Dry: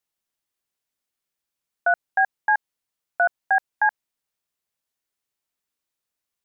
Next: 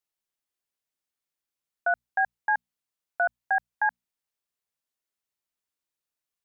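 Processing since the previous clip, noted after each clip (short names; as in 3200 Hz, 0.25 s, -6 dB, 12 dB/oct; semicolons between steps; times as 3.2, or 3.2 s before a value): notches 60/120/180/240 Hz; gain -5 dB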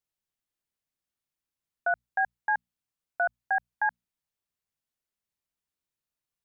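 tone controls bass +8 dB, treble -1 dB; gain -2 dB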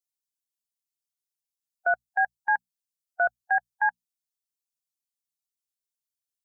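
per-bin expansion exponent 1.5; gain +3.5 dB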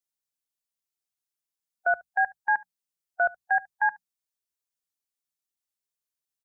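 echo 72 ms -24 dB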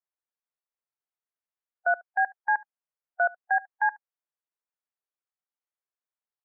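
Butterworth band-pass 910 Hz, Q 0.63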